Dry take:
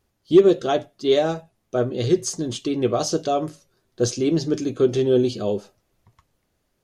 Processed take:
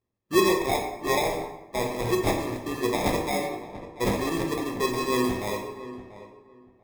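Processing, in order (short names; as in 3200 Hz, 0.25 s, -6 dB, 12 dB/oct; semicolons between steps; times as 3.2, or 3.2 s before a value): low-pass opened by the level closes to 460 Hz, open at -17.5 dBFS; tilt +3 dB/oct; sample-and-hold 30×; darkening echo 0.688 s, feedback 20%, low-pass 1700 Hz, level -14 dB; on a send at -1 dB: reverb RT60 1.0 s, pre-delay 8 ms; on the sum: gain -5 dB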